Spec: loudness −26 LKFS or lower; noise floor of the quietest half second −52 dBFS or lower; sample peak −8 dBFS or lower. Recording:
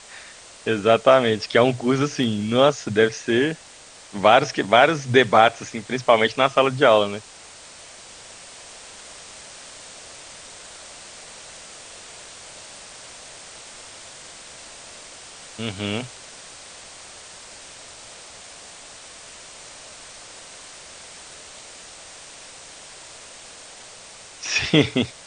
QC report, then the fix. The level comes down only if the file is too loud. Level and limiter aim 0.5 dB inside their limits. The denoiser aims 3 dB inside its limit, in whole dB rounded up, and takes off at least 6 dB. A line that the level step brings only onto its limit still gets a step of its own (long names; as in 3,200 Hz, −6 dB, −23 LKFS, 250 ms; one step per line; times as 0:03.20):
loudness −19.5 LKFS: out of spec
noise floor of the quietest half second −45 dBFS: out of spec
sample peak −1.5 dBFS: out of spec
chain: broadband denoise 6 dB, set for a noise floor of −45 dBFS
level −7 dB